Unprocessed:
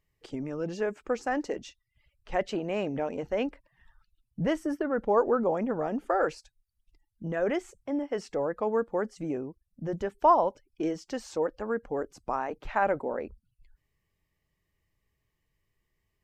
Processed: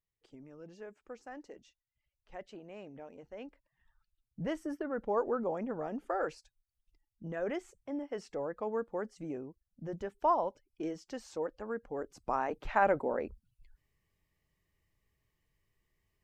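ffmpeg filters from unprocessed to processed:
-af "volume=-1dB,afade=t=in:st=3.34:d=1.28:silence=0.316228,afade=t=in:st=11.94:d=0.49:silence=0.473151"

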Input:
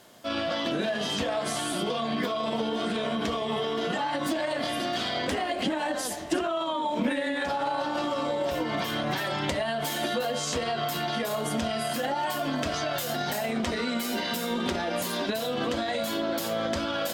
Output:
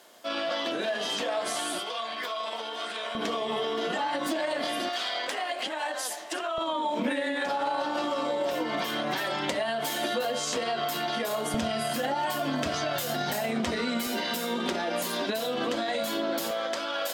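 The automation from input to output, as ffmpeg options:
-af "asetnsamples=n=441:p=0,asendcmd='1.79 highpass f 790;3.15 highpass f 260;4.89 highpass f 650;6.58 highpass f 230;11.54 highpass f 84;14.07 highpass f 210;16.51 highpass f 500',highpass=360"

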